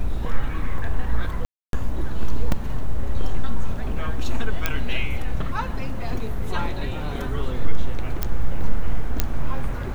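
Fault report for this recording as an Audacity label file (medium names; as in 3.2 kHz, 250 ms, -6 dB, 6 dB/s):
1.450000	1.730000	dropout 282 ms
2.520000	2.520000	dropout 2.4 ms
4.660000	4.660000	pop -6 dBFS
8.230000	8.230000	pop -8 dBFS
9.200000	9.200000	pop -4 dBFS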